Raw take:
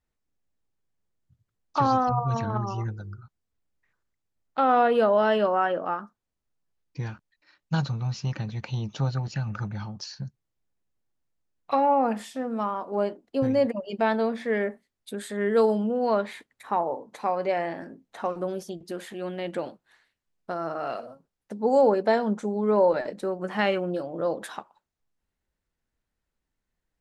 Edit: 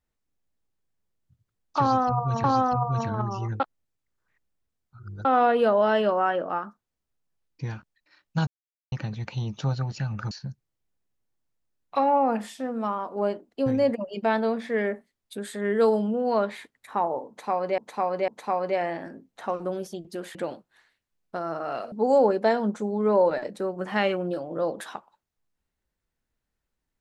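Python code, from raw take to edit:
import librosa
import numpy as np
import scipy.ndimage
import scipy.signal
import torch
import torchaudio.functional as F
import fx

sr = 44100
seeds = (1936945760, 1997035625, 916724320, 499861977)

y = fx.edit(x, sr, fx.repeat(start_s=1.8, length_s=0.64, count=2),
    fx.reverse_span(start_s=2.96, length_s=1.65),
    fx.silence(start_s=7.83, length_s=0.45),
    fx.cut(start_s=9.67, length_s=0.4),
    fx.repeat(start_s=17.04, length_s=0.5, count=3),
    fx.cut(start_s=19.11, length_s=0.39),
    fx.cut(start_s=21.07, length_s=0.48), tone=tone)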